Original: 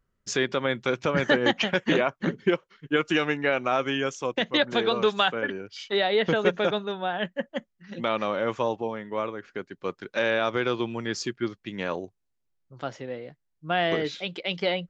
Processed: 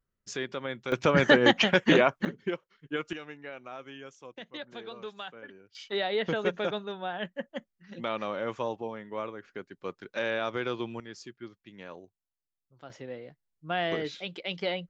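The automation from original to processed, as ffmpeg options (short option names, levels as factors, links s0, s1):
-af "asetnsamples=n=441:p=0,asendcmd='0.92 volume volume 2dB;2.25 volume volume -9dB;3.13 volume volume -18dB;5.75 volume volume -6dB;11 volume volume -14.5dB;12.9 volume volume -5dB',volume=0.355"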